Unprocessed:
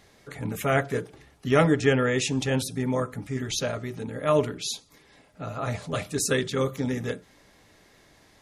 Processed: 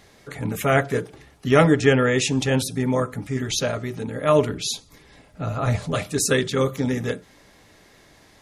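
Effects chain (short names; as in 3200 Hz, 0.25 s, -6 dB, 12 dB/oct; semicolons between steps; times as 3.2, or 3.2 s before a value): 4.49–5.92 low shelf 110 Hz +11.5 dB; gain +4.5 dB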